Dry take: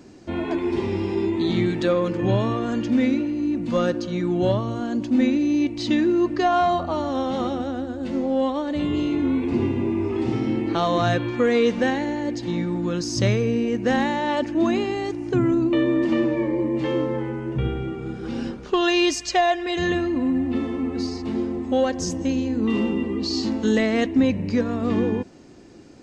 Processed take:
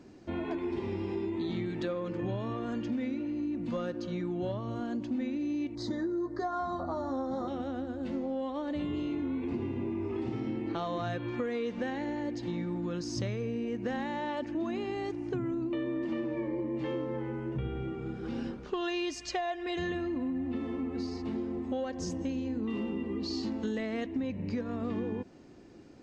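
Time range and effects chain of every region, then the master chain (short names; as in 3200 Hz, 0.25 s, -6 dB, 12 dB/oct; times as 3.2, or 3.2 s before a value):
5.75–7.48 Butterworth band-stop 2700 Hz, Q 1.1 + doubler 15 ms -5.5 dB
whole clip: high shelf 6300 Hz -10.5 dB; compressor, threshold -24 dBFS; gain -6.5 dB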